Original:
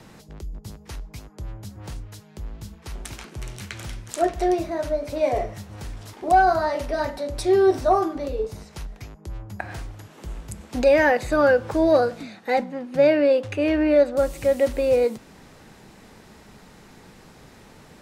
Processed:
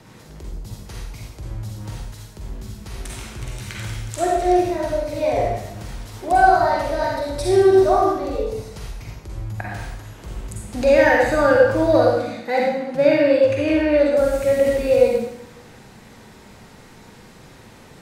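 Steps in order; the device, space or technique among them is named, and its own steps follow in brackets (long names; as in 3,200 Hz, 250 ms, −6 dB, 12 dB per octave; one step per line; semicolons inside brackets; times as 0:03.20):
bathroom (convolution reverb RT60 0.85 s, pre-delay 40 ms, DRR −3 dB)
level −1 dB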